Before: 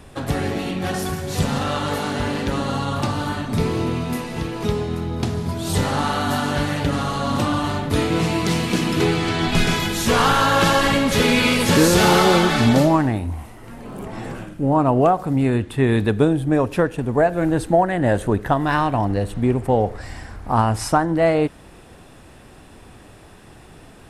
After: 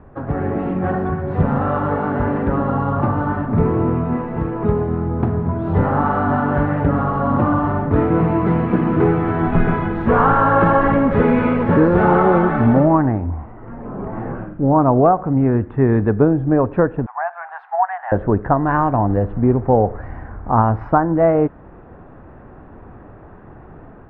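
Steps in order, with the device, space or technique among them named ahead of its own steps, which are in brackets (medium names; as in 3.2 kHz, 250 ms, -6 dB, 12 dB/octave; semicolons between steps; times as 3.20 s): 17.06–18.12 s: Chebyshev high-pass 740 Hz, order 6; action camera in a waterproof case (low-pass 1.5 kHz 24 dB/octave; level rider gain up to 5 dB; AAC 128 kbps 48 kHz)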